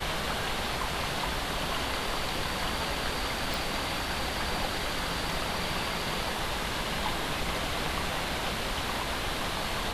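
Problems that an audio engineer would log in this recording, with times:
0:03.54: click

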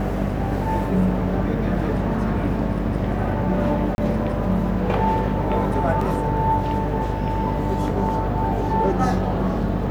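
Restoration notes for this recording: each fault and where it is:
mains buzz 50 Hz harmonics 14 −26 dBFS
0:03.95–0:03.98: drop-out 31 ms
0:06.01: drop-out 3.7 ms

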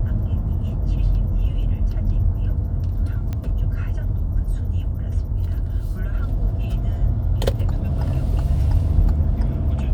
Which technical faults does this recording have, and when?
0:03.33: click −16 dBFS

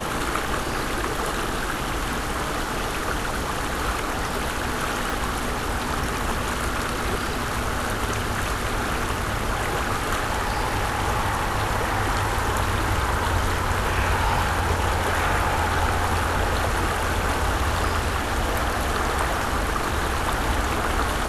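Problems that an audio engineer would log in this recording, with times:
0:05.10: click

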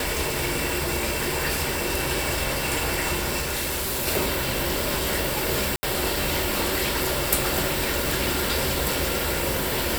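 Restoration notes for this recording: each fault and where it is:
0:03.40–0:04.08: clipping −24 dBFS
0:05.76–0:05.83: drop-out 70 ms

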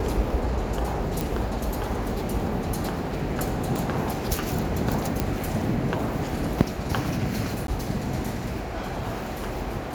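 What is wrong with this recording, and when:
0:01.21: click
0:03.76: click
0:05.20: click −9 dBFS
0:07.67–0:07.68: drop-out 12 ms

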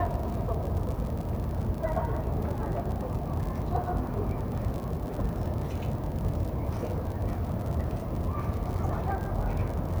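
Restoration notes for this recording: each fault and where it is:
surface crackle 58 per second −34 dBFS

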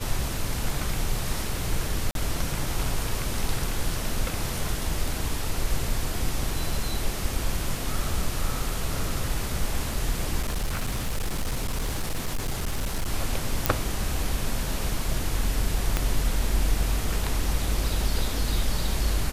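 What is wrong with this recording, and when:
0:02.11–0:02.15: drop-out 42 ms
0:10.40–0:13.07: clipping −23 dBFS
0:13.66: click −3 dBFS
0:15.97: click −9 dBFS

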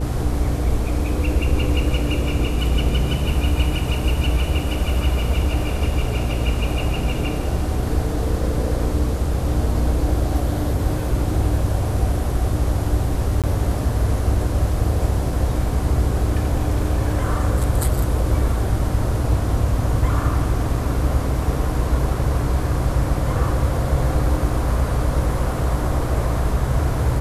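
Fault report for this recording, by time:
mains hum 60 Hz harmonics 8 −24 dBFS
0:13.42–0:13.44: drop-out 17 ms

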